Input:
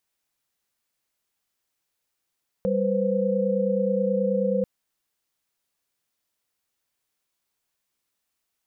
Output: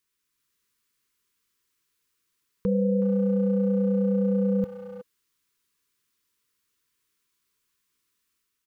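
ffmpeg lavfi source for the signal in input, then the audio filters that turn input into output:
-f lavfi -i "aevalsrc='0.0562*(sin(2*PI*196*t)+sin(2*PI*493.88*t)+sin(2*PI*523.25*t))':d=1.99:s=44100"
-filter_complex "[0:a]dynaudnorm=f=140:g=5:m=3.5dB,asuperstop=centerf=680:order=12:qfactor=1.5,asplit=2[a][b];[b]adelay=370,highpass=300,lowpass=3.4k,asoftclip=type=hard:threshold=-24.5dB,volume=-11dB[c];[a][c]amix=inputs=2:normalize=0"

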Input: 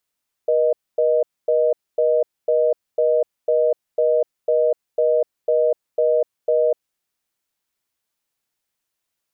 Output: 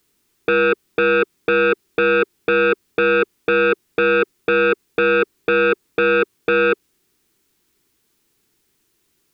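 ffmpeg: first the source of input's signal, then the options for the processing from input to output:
-f lavfi -i "aevalsrc='0.141*(sin(2*PI*480*t)+sin(2*PI*620*t))*clip(min(mod(t,0.5),0.25-mod(t,0.5))/0.005,0,1)':d=6.33:s=44100"
-filter_complex "[0:a]lowshelf=f=480:t=q:w=3:g=6.5,asplit=2[a][b];[b]aeval=exprs='0.316*sin(PI/2*3.98*val(0)/0.316)':c=same,volume=-5dB[c];[a][c]amix=inputs=2:normalize=0"

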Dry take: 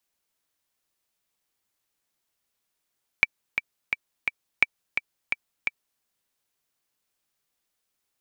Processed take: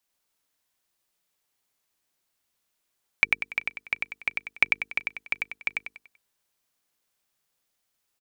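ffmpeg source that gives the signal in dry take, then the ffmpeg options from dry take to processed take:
-f lavfi -i "aevalsrc='pow(10,(-3.5-7.5*gte(mod(t,4*60/172),60/172))/20)*sin(2*PI*2320*mod(t,60/172))*exp(-6.91*mod(t,60/172)/0.03)':d=2.79:s=44100"
-filter_complex "[0:a]bandreject=f=50:t=h:w=6,bandreject=f=100:t=h:w=6,bandreject=f=150:t=h:w=6,bandreject=f=200:t=h:w=6,bandreject=f=250:t=h:w=6,bandreject=f=300:t=h:w=6,bandreject=f=350:t=h:w=6,bandreject=f=400:t=h:w=6,bandreject=f=450:t=h:w=6,asplit=2[a][b];[b]aecho=0:1:96|192|288|384|480:0.708|0.269|0.102|0.0388|0.0148[c];[a][c]amix=inputs=2:normalize=0"

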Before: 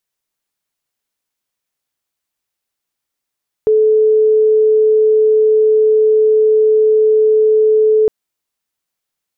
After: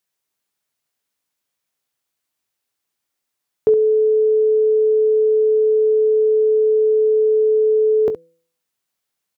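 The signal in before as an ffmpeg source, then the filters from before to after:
-f lavfi -i "aevalsrc='0.422*sin(2*PI*433*t)':d=4.41:s=44100"
-filter_complex "[0:a]highpass=72,bandreject=f=166.1:t=h:w=4,bandreject=f=332.2:t=h:w=4,bandreject=f=498.3:t=h:w=4,asplit=2[a][b];[b]aecho=0:1:20|68:0.299|0.266[c];[a][c]amix=inputs=2:normalize=0"

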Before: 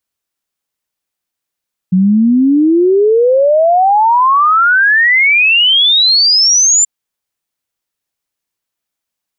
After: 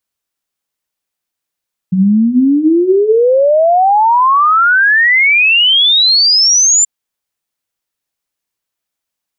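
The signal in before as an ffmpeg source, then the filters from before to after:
-f lavfi -i "aevalsrc='0.501*clip(min(t,4.93-t)/0.01,0,1)*sin(2*PI*180*4.93/log(7300/180)*(exp(log(7300/180)*t/4.93)-1))':d=4.93:s=44100"
-af "bandreject=f=60:t=h:w=6,bandreject=f=120:t=h:w=6,bandreject=f=180:t=h:w=6,bandreject=f=240:t=h:w=6,bandreject=f=300:t=h:w=6,bandreject=f=360:t=h:w=6,bandreject=f=420:t=h:w=6"

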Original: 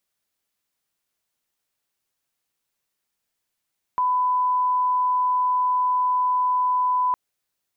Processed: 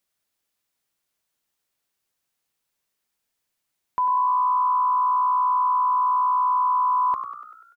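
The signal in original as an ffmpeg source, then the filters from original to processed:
-f lavfi -i "sine=f=1000:d=3.16:r=44100,volume=0.06dB"
-filter_complex "[0:a]asplit=8[a][b][c][d][e][f][g][h];[b]adelay=97,afreqshift=61,volume=-10.5dB[i];[c]adelay=194,afreqshift=122,volume=-15.2dB[j];[d]adelay=291,afreqshift=183,volume=-20dB[k];[e]adelay=388,afreqshift=244,volume=-24.7dB[l];[f]adelay=485,afreqshift=305,volume=-29.4dB[m];[g]adelay=582,afreqshift=366,volume=-34.2dB[n];[h]adelay=679,afreqshift=427,volume=-38.9dB[o];[a][i][j][k][l][m][n][o]amix=inputs=8:normalize=0"

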